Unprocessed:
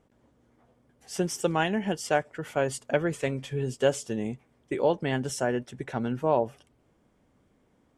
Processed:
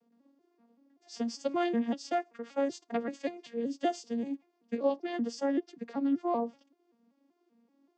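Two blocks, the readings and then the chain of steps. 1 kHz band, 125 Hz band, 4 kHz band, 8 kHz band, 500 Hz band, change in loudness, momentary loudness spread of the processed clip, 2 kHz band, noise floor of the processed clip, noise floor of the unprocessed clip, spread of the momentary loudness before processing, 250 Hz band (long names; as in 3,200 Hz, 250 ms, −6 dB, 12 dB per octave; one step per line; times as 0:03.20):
−4.0 dB, below −20 dB, −7.5 dB, −12.5 dB, −6.0 dB, −4.5 dB, 9 LU, −11.0 dB, −75 dBFS, −67 dBFS, 8 LU, −0.5 dB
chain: vocoder with an arpeggio as carrier minor triad, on A#3, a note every 192 ms
parametric band 4,900 Hz +11 dB 0.88 octaves
level −3.5 dB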